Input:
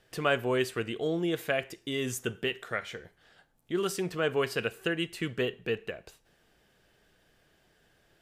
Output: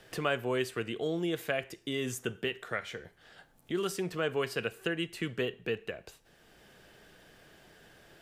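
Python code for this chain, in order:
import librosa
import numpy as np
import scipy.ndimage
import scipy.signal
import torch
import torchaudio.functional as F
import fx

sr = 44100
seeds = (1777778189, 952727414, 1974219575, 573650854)

y = fx.band_squash(x, sr, depth_pct=40)
y = F.gain(torch.from_numpy(y), -2.5).numpy()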